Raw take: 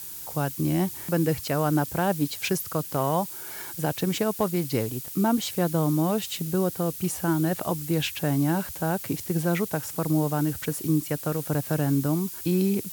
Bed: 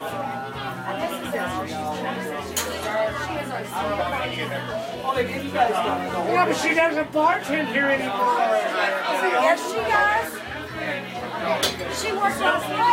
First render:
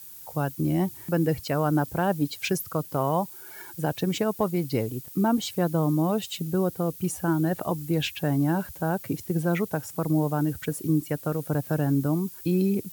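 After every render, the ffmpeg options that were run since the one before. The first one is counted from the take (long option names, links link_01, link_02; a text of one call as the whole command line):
ffmpeg -i in.wav -af "afftdn=noise_reduction=9:noise_floor=-38" out.wav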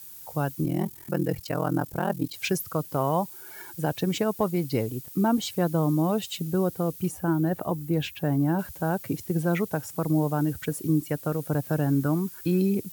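ffmpeg -i in.wav -filter_complex "[0:a]asettb=1/sr,asplit=3[link_01][link_02][link_03];[link_01]atrim=end=0.644[link_04];[link_02]atrim=start=0.64:end=2.34,asetpts=PTS-STARTPTS,afade=type=in:duration=0.004:curve=qsin,afade=type=out:start_time=1.696:duration=0.004:curve=qsin,aeval=exprs='val(0)*sin(2*PI*21*n/s)':channel_layout=same[link_05];[link_03]atrim=start=2.336[link_06];[link_04][link_05]acrossfade=duration=0.004:curve1=hsin:curve2=qsin[link_07];[link_07][link_06]acrossfade=duration=0.004:curve1=qsin:curve2=hsin,asettb=1/sr,asplit=3[link_08][link_09][link_10];[link_08]atrim=end=7.084[link_11];[link_09]atrim=start=7.08:end=8.59,asetpts=PTS-STARTPTS,afade=type=in:duration=0.004:curve=qsin,afade=type=out:start_time=1.506:duration=0.004:curve=qsin,equalizer=frequency=6100:width=0.31:gain=-6.5[link_12];[link_10]atrim=start=8.586[link_13];[link_11][link_12]acrossfade=duration=0.004:curve1=hsin:curve2=qsin[link_14];[link_14][link_13]acrossfade=duration=0.004:curve1=qsin:curve2=hsin,asettb=1/sr,asplit=3[link_15][link_16][link_17];[link_15]atrim=end=11.924[link_18];[link_16]atrim=start=11.92:end=12.6,asetpts=PTS-STARTPTS,afade=type=in:duration=0.004:curve=qsin,afade=type=out:start_time=0.676:duration=0.004:curve=qsin,equalizer=frequency=1500:width=1.9:gain=8[link_19];[link_17]atrim=start=12.596[link_20];[link_18][link_19]acrossfade=duration=0.004:curve1=hsin:curve2=qsin[link_21];[link_21][link_20]acrossfade=duration=0.004:curve1=qsin:curve2=hsin" out.wav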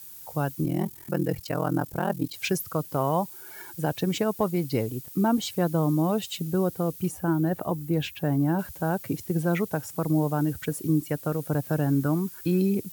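ffmpeg -i in.wav -af anull out.wav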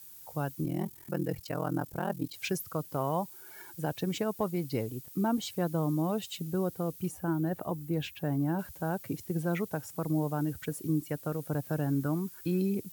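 ffmpeg -i in.wav -af "volume=-6dB" out.wav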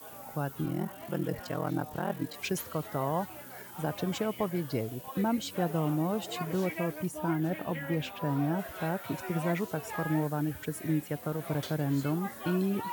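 ffmpeg -i in.wav -i bed.wav -filter_complex "[1:a]volume=-20dB[link_01];[0:a][link_01]amix=inputs=2:normalize=0" out.wav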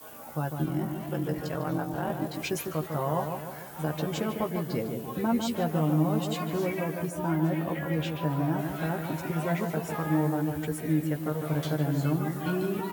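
ffmpeg -i in.wav -filter_complex "[0:a]asplit=2[link_01][link_02];[link_02]adelay=13,volume=-5dB[link_03];[link_01][link_03]amix=inputs=2:normalize=0,asplit=2[link_04][link_05];[link_05]adelay=151,lowpass=frequency=1500:poles=1,volume=-5dB,asplit=2[link_06][link_07];[link_07]adelay=151,lowpass=frequency=1500:poles=1,volume=0.54,asplit=2[link_08][link_09];[link_09]adelay=151,lowpass=frequency=1500:poles=1,volume=0.54,asplit=2[link_10][link_11];[link_11]adelay=151,lowpass=frequency=1500:poles=1,volume=0.54,asplit=2[link_12][link_13];[link_13]adelay=151,lowpass=frequency=1500:poles=1,volume=0.54,asplit=2[link_14][link_15];[link_15]adelay=151,lowpass=frequency=1500:poles=1,volume=0.54,asplit=2[link_16][link_17];[link_17]adelay=151,lowpass=frequency=1500:poles=1,volume=0.54[link_18];[link_06][link_08][link_10][link_12][link_14][link_16][link_18]amix=inputs=7:normalize=0[link_19];[link_04][link_19]amix=inputs=2:normalize=0" out.wav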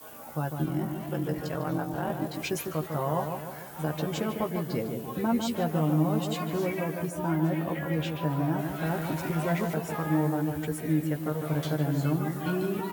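ffmpeg -i in.wav -filter_complex "[0:a]asettb=1/sr,asplit=3[link_01][link_02][link_03];[link_01]atrim=end=8.864[link_04];[link_02]atrim=start=8.86:end=9.74,asetpts=PTS-STARTPTS,afade=type=in:duration=0.004:curve=qsin,afade=type=out:start_time=0.876:duration=0.004:curve=qsin,aeval=exprs='val(0)+0.5*0.0112*sgn(val(0))':channel_layout=same[link_05];[link_03]atrim=start=9.736[link_06];[link_04][link_05]acrossfade=duration=0.004:curve1=hsin:curve2=qsin[link_07];[link_07][link_06]acrossfade=duration=0.004:curve1=qsin:curve2=hsin" out.wav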